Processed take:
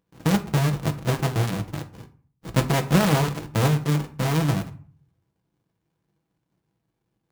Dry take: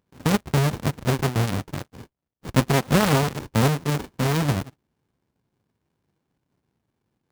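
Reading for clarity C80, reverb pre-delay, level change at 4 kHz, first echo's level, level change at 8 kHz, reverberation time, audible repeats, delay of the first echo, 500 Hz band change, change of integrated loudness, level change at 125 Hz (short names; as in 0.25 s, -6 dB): 20.0 dB, 6 ms, -1.5 dB, none, -1.5 dB, 0.45 s, none, none, -2.0 dB, -0.5 dB, +0.5 dB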